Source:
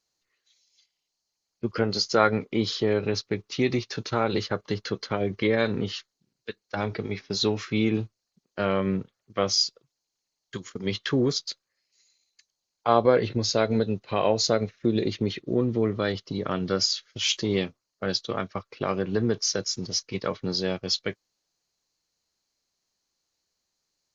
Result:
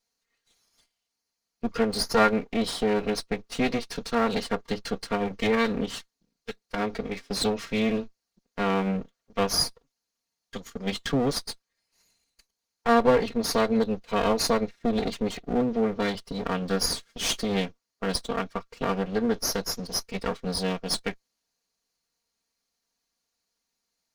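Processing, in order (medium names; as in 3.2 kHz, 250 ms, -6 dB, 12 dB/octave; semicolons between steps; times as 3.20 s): comb filter that takes the minimum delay 4.3 ms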